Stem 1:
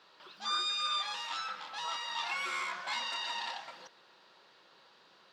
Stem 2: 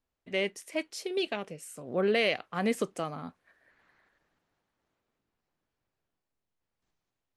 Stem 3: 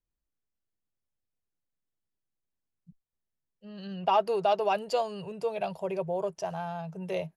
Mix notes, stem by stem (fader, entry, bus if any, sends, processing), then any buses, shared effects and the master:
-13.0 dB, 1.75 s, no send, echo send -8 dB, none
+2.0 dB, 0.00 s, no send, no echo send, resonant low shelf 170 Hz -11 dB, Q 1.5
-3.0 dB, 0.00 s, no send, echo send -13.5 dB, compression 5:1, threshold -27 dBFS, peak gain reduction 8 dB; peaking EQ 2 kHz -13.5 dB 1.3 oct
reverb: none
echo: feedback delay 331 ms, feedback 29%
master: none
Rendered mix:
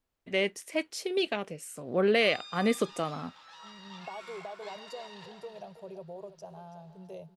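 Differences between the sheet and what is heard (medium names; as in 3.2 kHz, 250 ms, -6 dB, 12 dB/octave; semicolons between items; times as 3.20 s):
stem 2: missing resonant low shelf 170 Hz -11 dB, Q 1.5; stem 3 -3.0 dB -> -10.0 dB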